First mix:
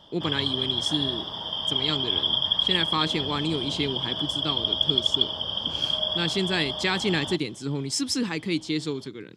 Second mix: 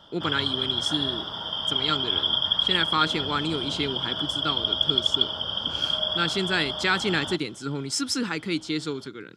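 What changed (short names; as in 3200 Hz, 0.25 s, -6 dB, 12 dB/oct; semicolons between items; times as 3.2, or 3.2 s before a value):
speech: add low shelf 170 Hz -4.5 dB; master: add bell 1400 Hz +14 dB 0.23 oct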